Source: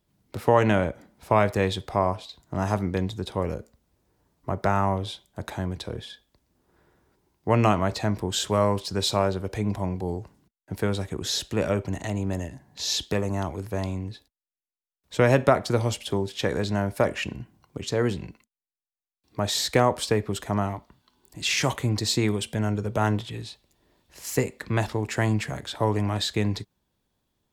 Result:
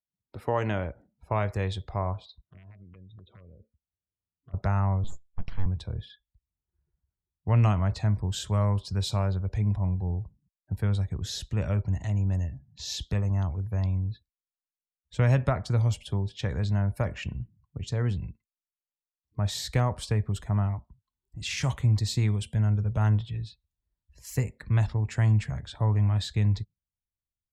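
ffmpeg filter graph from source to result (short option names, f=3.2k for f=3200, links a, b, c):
-filter_complex "[0:a]asettb=1/sr,asplit=3[a][b][c];[a]atrim=end=2.414[d];[b]atrim=start=2.41:end=4.54,asetpts=PTS-STARTPTS,afade=t=in:d=0.004:c=qsin,afade=t=out:st=2.126:d=0.004:c=qsin,acompressor=threshold=-39dB:ratio=16:attack=3.2:release=140:knee=1:detection=peak,aeval=exprs='(mod(50.1*val(0)+1,2)-1)/50.1':c=same,highpass=100,equalizer=f=130:t=q:w=4:g=-8,equalizer=f=840:t=q:w=4:g=-9,equalizer=f=1.6k:t=q:w=4:g=-4,lowpass=f=3.8k:w=0.5412,lowpass=f=3.8k:w=1.3066[e];[c]atrim=start=4.536[f];[d][e]acrossfade=d=0.004:c1=hsin:c2=qsin[g];[g][f]acrossfade=d=0.004:c1=qsin:c2=hsin,asettb=1/sr,asplit=3[h][i][j];[h]atrim=end=5.044[k];[i]atrim=start=5.04:end=5.66,asetpts=PTS-STARTPTS,afade=t=in:d=0.004:c=qsin,afade=t=out:st=0.616:d=0.004:c=qsin,lowpass=f=4.4k:w=0.5412,lowpass=f=4.4k:w=1.3066,aeval=exprs='abs(val(0))':c=same[l];[j]atrim=start=5.656[m];[k][l]acrossfade=d=0.004:c1=hsin:c2=qsin[n];[n][m]acrossfade=d=0.004:c1=qsin:c2=hsin,afftdn=nr=24:nf=-48,asubboost=boost=9:cutoff=110,volume=-8dB"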